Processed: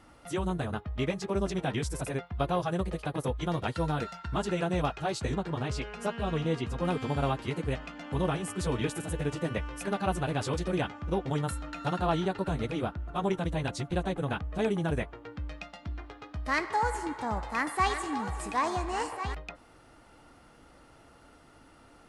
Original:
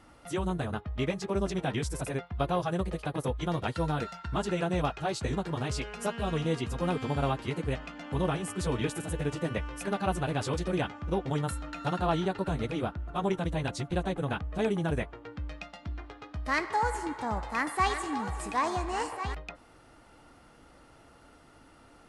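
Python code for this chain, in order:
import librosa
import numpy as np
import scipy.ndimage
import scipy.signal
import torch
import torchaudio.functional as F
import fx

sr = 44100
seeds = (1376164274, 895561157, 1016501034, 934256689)

y = fx.high_shelf(x, sr, hz=7100.0, db=-10.5, at=(5.34, 6.85))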